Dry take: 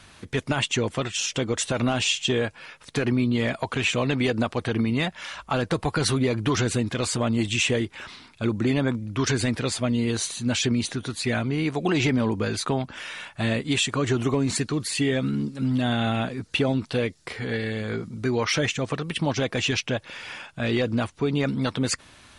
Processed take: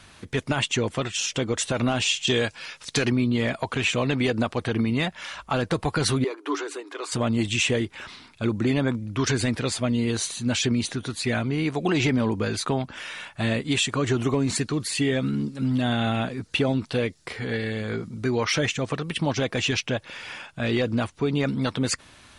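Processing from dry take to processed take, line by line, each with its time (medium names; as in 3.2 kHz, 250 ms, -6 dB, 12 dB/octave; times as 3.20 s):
2.27–3.10 s: peaking EQ 5.7 kHz +11.5 dB 2 oct
6.24–7.12 s: rippled Chebyshev high-pass 280 Hz, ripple 9 dB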